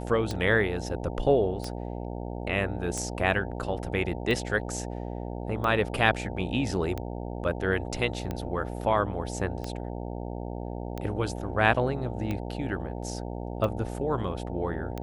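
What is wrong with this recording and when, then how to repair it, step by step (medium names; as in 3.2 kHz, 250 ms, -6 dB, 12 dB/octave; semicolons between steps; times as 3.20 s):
buzz 60 Hz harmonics 15 -35 dBFS
tick 45 rpm -19 dBFS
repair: de-click; de-hum 60 Hz, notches 15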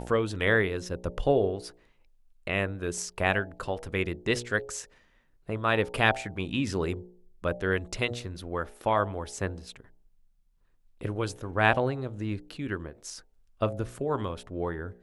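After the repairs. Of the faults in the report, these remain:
nothing left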